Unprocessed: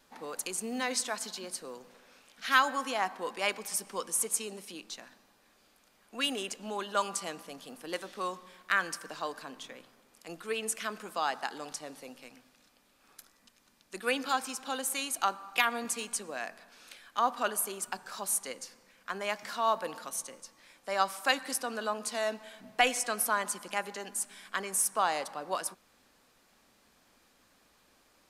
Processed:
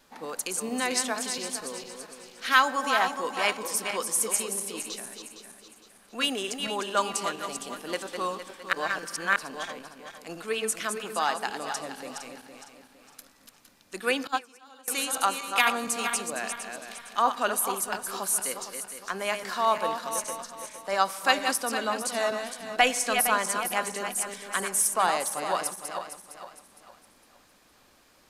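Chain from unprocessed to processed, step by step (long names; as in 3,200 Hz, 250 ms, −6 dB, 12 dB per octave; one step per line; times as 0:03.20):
feedback delay that plays each chunk backwards 230 ms, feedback 59%, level −6.5 dB
0:08.73–0:09.36: reverse
0:14.27–0:14.88: noise gate −26 dBFS, range −22 dB
level +4 dB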